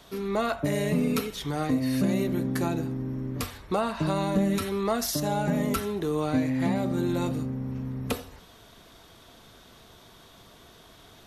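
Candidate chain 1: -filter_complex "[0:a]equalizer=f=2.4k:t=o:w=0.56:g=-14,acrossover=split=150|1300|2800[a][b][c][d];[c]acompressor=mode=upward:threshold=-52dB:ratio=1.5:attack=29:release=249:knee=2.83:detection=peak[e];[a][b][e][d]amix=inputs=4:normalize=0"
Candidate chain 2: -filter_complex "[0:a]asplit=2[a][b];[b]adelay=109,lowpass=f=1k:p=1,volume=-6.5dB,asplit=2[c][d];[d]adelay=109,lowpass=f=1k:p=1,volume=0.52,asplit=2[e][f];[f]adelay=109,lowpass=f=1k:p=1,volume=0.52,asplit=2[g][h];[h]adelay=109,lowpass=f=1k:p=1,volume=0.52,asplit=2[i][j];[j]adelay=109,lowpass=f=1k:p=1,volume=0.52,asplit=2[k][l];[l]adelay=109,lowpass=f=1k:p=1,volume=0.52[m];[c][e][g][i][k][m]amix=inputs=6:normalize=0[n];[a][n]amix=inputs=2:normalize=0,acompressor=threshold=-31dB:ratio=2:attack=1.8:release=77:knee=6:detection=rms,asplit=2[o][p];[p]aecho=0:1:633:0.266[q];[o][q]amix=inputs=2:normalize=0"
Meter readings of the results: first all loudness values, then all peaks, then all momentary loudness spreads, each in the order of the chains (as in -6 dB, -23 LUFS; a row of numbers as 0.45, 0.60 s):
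-28.5, -32.0 LUFS; -14.5, -19.5 dBFS; 7, 20 LU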